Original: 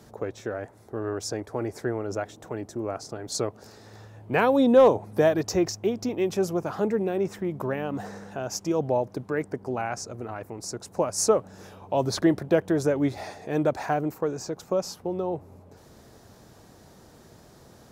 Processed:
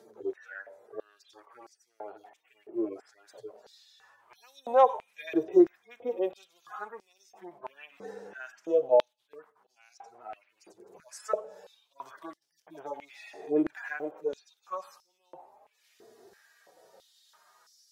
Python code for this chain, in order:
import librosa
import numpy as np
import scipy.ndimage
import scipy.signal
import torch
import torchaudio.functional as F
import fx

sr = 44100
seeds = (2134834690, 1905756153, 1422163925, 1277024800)

y = fx.hpss_only(x, sr, part='harmonic')
y = fx.rev_schroeder(y, sr, rt60_s=0.56, comb_ms=28, drr_db=19.0)
y = fx.filter_held_highpass(y, sr, hz=3.0, low_hz=370.0, high_hz=5200.0)
y = F.gain(torch.from_numpy(y), -4.5).numpy()